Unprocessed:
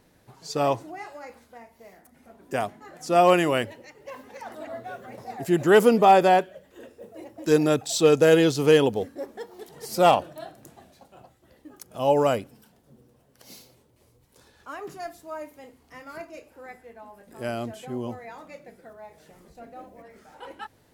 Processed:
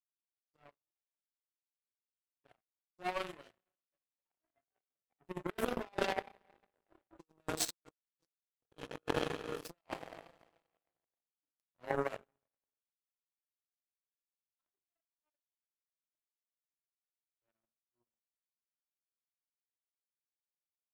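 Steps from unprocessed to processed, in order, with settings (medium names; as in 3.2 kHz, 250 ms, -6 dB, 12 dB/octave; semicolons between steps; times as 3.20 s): local Wiener filter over 9 samples; Doppler pass-by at 8.47 s, 13 m/s, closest 2.9 m; feedback delay 80 ms, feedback 32%, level -14.5 dB; reverb removal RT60 0.56 s; two-slope reverb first 0.29 s, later 3.5 s, from -22 dB, DRR -9.5 dB; compressor with a negative ratio -32 dBFS, ratio -0.5; power-law waveshaper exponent 3; trim +1.5 dB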